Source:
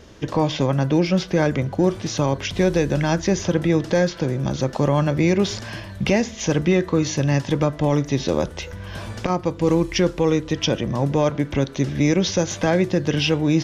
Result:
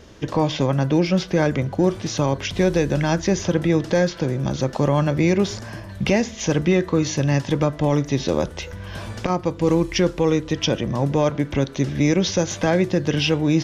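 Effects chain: 5.41–5.88 bell 3200 Hz -3 dB -> -13 dB 1.5 oct

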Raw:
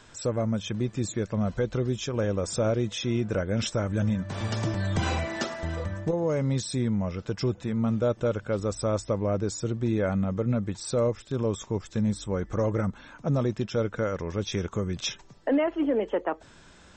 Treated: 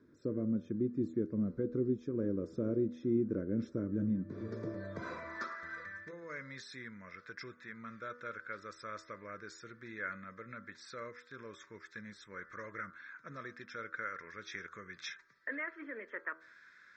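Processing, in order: band-pass sweep 310 Hz -> 1800 Hz, 4.24–5.9; fixed phaser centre 2900 Hz, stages 6; de-hum 80.78 Hz, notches 20; gain +2.5 dB

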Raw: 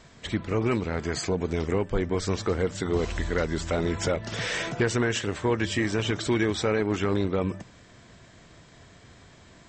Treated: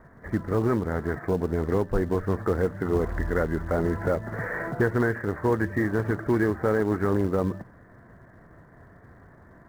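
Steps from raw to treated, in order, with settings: steep low-pass 1900 Hz 72 dB/oct; in parallel at -7.5 dB: short-mantissa float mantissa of 2-bit; on the sum: gain -1.5 dB

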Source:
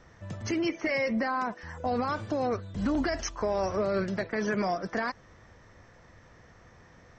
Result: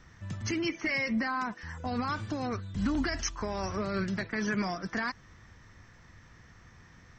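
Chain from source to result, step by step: bell 560 Hz -12 dB 1.3 oct; gain +2 dB

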